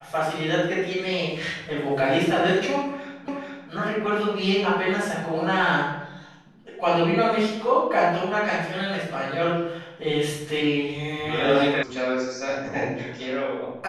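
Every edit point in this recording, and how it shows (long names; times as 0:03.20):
0:03.28: the same again, the last 0.43 s
0:11.83: cut off before it has died away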